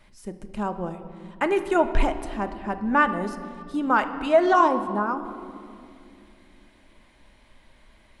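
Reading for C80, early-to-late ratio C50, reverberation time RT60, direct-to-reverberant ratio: 12.0 dB, 11.0 dB, 2.5 s, 7.0 dB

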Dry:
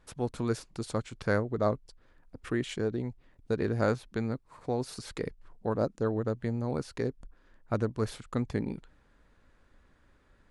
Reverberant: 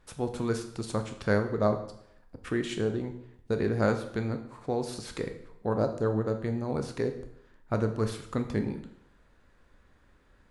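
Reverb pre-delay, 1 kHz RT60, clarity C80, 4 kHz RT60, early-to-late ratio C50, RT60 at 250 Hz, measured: 6 ms, 0.70 s, 13.0 dB, 0.65 s, 10.5 dB, 0.70 s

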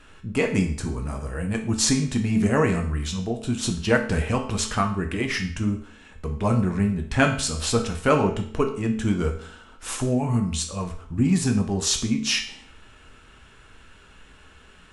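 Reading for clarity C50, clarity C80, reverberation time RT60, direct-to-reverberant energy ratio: 9.0 dB, 12.5 dB, 0.55 s, 3.0 dB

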